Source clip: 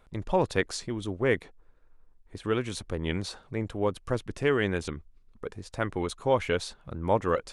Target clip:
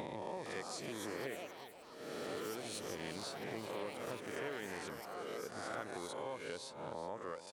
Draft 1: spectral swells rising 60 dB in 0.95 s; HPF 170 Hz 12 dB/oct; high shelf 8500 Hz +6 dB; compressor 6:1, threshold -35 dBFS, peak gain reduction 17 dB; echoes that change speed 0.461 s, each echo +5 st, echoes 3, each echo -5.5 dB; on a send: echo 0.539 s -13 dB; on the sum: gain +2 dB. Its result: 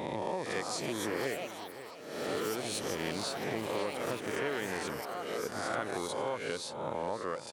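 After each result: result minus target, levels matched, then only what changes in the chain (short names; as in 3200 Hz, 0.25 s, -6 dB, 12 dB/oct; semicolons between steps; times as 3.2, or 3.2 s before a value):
echo 0.17 s late; compressor: peak gain reduction -8.5 dB
change: echo 0.369 s -13 dB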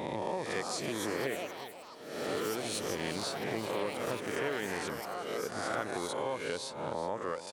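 compressor: peak gain reduction -8.5 dB
change: compressor 6:1, threshold -45 dBFS, peak gain reduction 25.5 dB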